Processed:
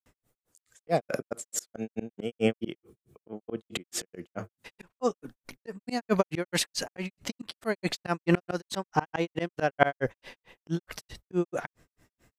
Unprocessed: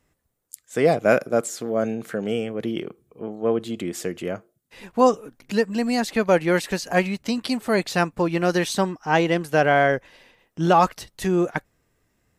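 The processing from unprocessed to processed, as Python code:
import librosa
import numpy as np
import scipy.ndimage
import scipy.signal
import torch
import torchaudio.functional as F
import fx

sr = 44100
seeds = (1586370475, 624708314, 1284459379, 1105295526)

y = fx.hum_notches(x, sr, base_hz=50, count=2)
y = fx.granulator(y, sr, seeds[0], grain_ms=146.0, per_s=4.6, spray_ms=100.0, spread_st=0)
y = fx.auto_swell(y, sr, attack_ms=264.0)
y = F.gain(torch.from_numpy(y), 8.0).numpy()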